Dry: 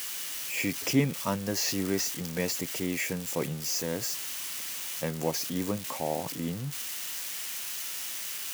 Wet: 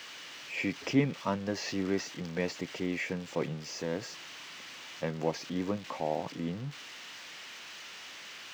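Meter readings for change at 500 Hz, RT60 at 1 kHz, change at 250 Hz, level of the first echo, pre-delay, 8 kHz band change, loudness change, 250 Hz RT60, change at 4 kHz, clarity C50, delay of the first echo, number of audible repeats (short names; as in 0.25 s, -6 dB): -1.0 dB, none, -1.5 dB, none, none, -14.5 dB, -5.0 dB, none, -6.0 dB, none, none, none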